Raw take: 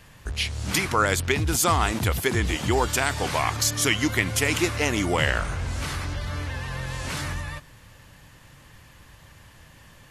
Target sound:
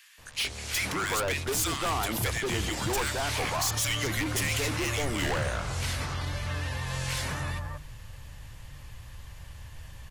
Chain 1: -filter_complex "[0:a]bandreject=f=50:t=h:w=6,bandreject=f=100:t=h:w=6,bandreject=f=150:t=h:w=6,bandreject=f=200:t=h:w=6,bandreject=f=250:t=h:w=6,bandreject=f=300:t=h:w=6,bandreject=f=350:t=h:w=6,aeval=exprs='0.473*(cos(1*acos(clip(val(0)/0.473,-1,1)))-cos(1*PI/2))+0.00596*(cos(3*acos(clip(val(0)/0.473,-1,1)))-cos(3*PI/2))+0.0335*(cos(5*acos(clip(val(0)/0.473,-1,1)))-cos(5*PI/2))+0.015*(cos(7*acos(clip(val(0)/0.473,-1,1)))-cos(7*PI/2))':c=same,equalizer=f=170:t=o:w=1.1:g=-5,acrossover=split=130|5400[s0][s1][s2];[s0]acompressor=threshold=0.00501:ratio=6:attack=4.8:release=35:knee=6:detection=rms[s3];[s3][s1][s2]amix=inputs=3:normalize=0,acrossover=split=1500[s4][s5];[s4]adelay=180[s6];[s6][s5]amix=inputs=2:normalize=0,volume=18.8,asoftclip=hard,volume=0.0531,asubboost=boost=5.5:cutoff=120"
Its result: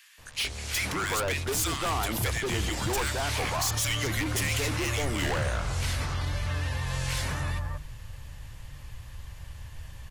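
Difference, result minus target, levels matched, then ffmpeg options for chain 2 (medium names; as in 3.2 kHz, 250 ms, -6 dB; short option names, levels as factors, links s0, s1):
compression: peak gain reduction -6.5 dB
-filter_complex "[0:a]bandreject=f=50:t=h:w=6,bandreject=f=100:t=h:w=6,bandreject=f=150:t=h:w=6,bandreject=f=200:t=h:w=6,bandreject=f=250:t=h:w=6,bandreject=f=300:t=h:w=6,bandreject=f=350:t=h:w=6,aeval=exprs='0.473*(cos(1*acos(clip(val(0)/0.473,-1,1)))-cos(1*PI/2))+0.00596*(cos(3*acos(clip(val(0)/0.473,-1,1)))-cos(3*PI/2))+0.0335*(cos(5*acos(clip(val(0)/0.473,-1,1)))-cos(5*PI/2))+0.015*(cos(7*acos(clip(val(0)/0.473,-1,1)))-cos(7*PI/2))':c=same,equalizer=f=170:t=o:w=1.1:g=-5,acrossover=split=130|5400[s0][s1][s2];[s0]acompressor=threshold=0.002:ratio=6:attack=4.8:release=35:knee=6:detection=rms[s3];[s3][s1][s2]amix=inputs=3:normalize=0,acrossover=split=1500[s4][s5];[s4]adelay=180[s6];[s6][s5]amix=inputs=2:normalize=0,volume=18.8,asoftclip=hard,volume=0.0531,asubboost=boost=5.5:cutoff=120"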